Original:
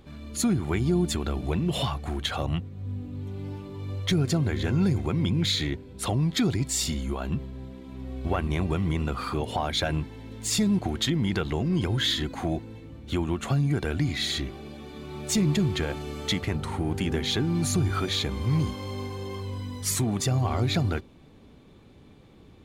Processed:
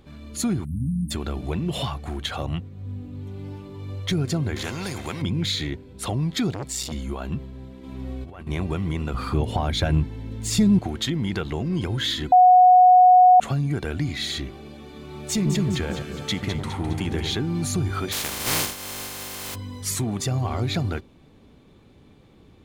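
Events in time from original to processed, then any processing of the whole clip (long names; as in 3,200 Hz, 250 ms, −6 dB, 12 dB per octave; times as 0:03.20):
0:00.65–0:01.11: time-frequency box erased 300–8,200 Hz
0:04.56–0:05.22: every bin compressed towards the loudest bin 2 to 1
0:06.51–0:06.92: saturating transformer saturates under 720 Hz
0:07.83–0:08.47: compressor whose output falls as the input rises −35 dBFS
0:09.14–0:10.80: low-shelf EQ 230 Hz +11 dB
0:12.32–0:13.40: beep over 732 Hz −9 dBFS
0:15.29–0:17.37: delay that swaps between a low-pass and a high-pass 103 ms, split 1,500 Hz, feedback 72%, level −5.5 dB
0:18.11–0:19.54: compressing power law on the bin magnitudes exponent 0.22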